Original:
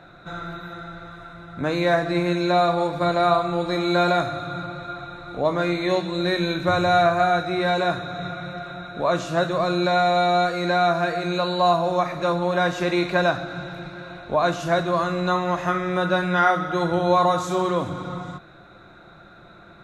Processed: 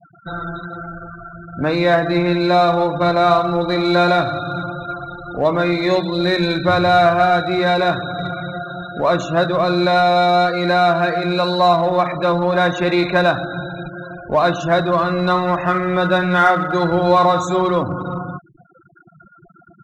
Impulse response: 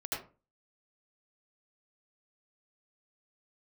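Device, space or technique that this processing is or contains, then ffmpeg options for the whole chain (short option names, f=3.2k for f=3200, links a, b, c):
parallel distortion: -filter_complex "[0:a]afftfilt=real='re*gte(hypot(re,im),0.0224)':imag='im*gte(hypot(re,im),0.0224)':win_size=1024:overlap=0.75,asplit=2[a][b];[b]asoftclip=type=hard:threshold=-24dB,volume=-9dB[c];[a][c]amix=inputs=2:normalize=0,volume=4dB"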